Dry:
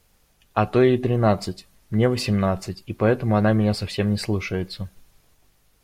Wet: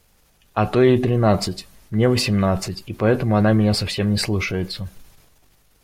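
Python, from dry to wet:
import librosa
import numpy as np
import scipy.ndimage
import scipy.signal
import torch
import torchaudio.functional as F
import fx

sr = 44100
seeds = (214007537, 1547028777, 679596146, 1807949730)

y = fx.transient(x, sr, attack_db=-3, sustain_db=6)
y = F.gain(torch.from_numpy(y), 2.5).numpy()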